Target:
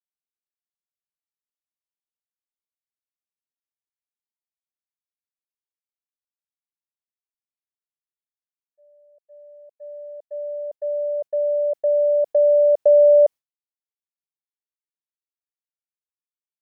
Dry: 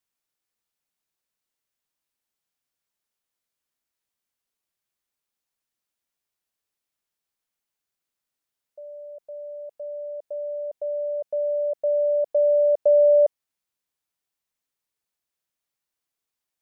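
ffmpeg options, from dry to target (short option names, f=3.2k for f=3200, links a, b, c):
-af "agate=range=-33dB:threshold=-28dB:ratio=3:detection=peak,volume=3.5dB"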